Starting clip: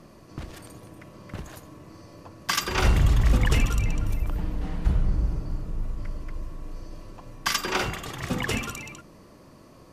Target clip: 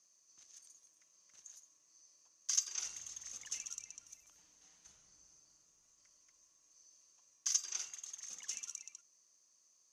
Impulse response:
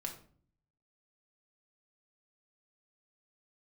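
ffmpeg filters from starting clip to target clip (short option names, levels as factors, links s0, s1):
-af "bandpass=f=6300:t=q:w=14:csg=0,volume=2"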